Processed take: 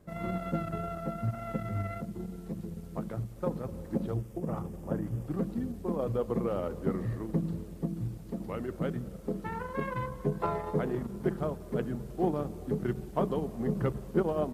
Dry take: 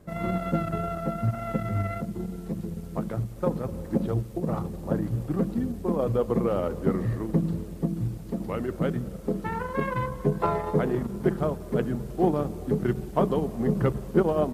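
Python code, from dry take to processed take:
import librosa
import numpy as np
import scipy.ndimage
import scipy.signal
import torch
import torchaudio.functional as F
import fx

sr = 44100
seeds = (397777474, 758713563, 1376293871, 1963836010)

y = fx.peak_eq(x, sr, hz=4100.0, db=-11.5, octaves=0.26, at=(4.17, 5.26))
y = F.gain(torch.from_numpy(y), -6.0).numpy()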